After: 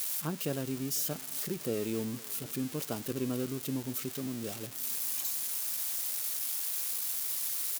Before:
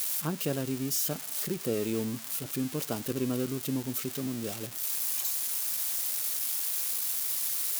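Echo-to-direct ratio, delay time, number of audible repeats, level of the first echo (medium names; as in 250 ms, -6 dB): -22.5 dB, 502 ms, 2, -23.5 dB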